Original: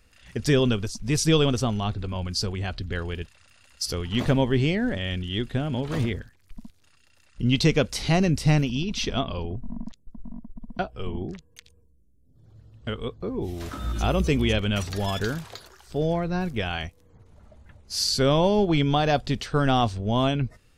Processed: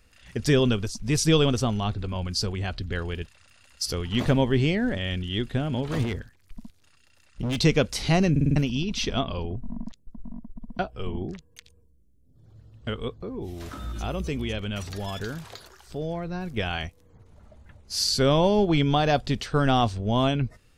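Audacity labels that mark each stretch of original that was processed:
6.030000	7.600000	overload inside the chain gain 24 dB
8.310000	8.310000	stutter in place 0.05 s, 5 plays
13.180000	16.570000	compression 1.5:1, threshold -38 dBFS

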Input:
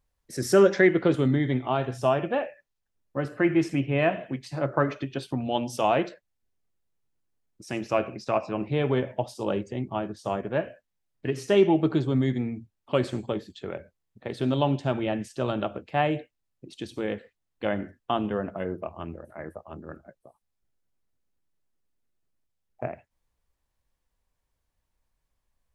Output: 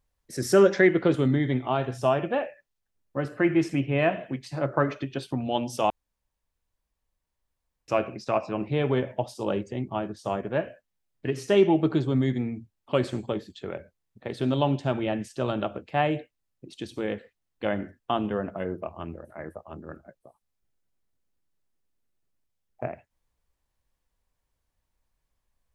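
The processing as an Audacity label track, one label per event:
5.900000	7.880000	room tone

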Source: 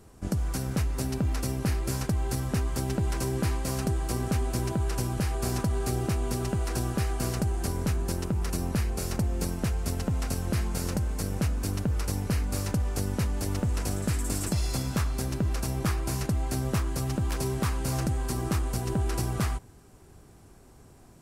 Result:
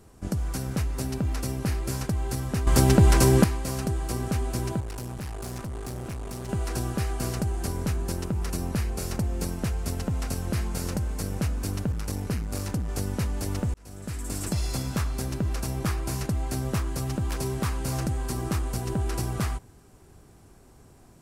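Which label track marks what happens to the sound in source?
2.670000	3.440000	gain +11 dB
4.800000	6.490000	valve stage drive 31 dB, bias 0.75
11.920000	12.890000	transformer saturation saturates under 190 Hz
13.740000	14.520000	fade in

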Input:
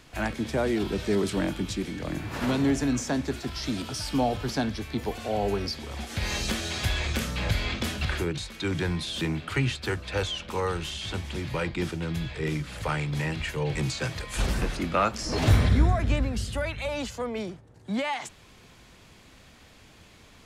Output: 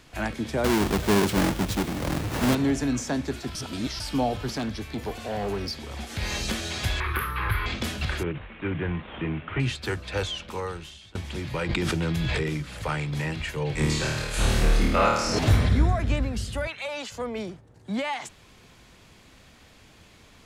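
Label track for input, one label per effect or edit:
0.640000	2.550000	square wave that keeps the level
3.550000	4.000000	reverse
4.560000	6.190000	hard clipper -25.5 dBFS
7.000000	7.660000	FFT filter 110 Hz 0 dB, 240 Hz -14 dB, 370 Hz +4 dB, 620 Hz -14 dB, 1.1 kHz +14 dB, 1.8 kHz +5 dB, 3.9 kHz -9 dB, 7.5 kHz -28 dB, 11 kHz +7 dB
8.230000	9.600000	CVSD coder 16 kbps
10.320000	11.150000	fade out, to -23.5 dB
11.690000	12.430000	level flattener amount 100%
13.750000	15.390000	flutter echo walls apart 4.5 m, dies away in 0.97 s
16.670000	17.120000	frequency weighting A

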